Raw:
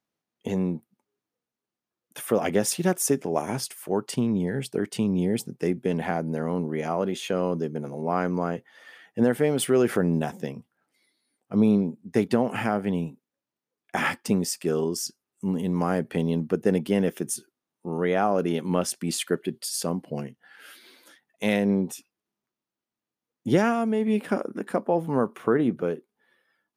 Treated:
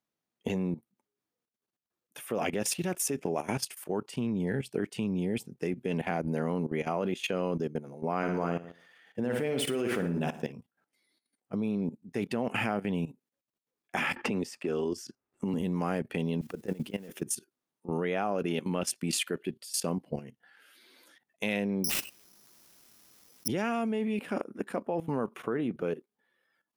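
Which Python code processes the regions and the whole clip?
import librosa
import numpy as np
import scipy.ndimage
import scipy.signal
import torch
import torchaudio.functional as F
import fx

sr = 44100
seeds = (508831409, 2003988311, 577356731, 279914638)

y = fx.chain(x, sr, fx.median_filter(points=3),
    fx.room_flutter(wall_m=10.0, rt60_s=0.51), at=(8.17, 10.52))
y = fx.chain(y, sr, fx.lowpass(hz=2400.0, slope=6),
    fx.peak_eq(hz=170.0, db=-8.5, octaves=0.31),
    fx.band_squash(depth_pct=100), at=(14.16, 15.54))
y = fx.chain(y, sr, fx.auto_swell(attack_ms=151.0),
    fx.over_compress(threshold_db=-31.0, ratio=-0.5),
    fx.quant_dither(seeds[0], bits=10, dither='triangular'), at=(16.41, 17.22))
y = fx.chain(y, sr, fx.resample_bad(factor=8, down='none', up='zero_stuff'),
    fx.env_flatten(amount_pct=50), at=(21.84, 23.48))
y = fx.dynamic_eq(y, sr, hz=2600.0, q=2.6, threshold_db=-52.0, ratio=4.0, max_db=8)
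y = fx.level_steps(y, sr, step_db=15)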